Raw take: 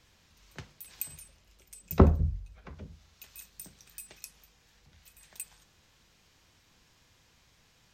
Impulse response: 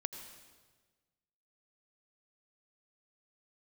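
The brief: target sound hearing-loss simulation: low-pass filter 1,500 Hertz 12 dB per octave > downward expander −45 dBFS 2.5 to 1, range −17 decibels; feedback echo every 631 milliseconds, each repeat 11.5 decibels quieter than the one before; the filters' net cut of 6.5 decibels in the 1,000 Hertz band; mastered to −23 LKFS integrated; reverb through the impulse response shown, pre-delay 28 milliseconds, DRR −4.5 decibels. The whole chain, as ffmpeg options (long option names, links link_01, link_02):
-filter_complex "[0:a]equalizer=frequency=1000:width_type=o:gain=-7.5,aecho=1:1:631|1262|1893:0.266|0.0718|0.0194,asplit=2[link_01][link_02];[1:a]atrim=start_sample=2205,adelay=28[link_03];[link_02][link_03]afir=irnorm=-1:irlink=0,volume=5dB[link_04];[link_01][link_04]amix=inputs=2:normalize=0,lowpass=1500,agate=range=-17dB:threshold=-45dB:ratio=2.5,volume=-1dB"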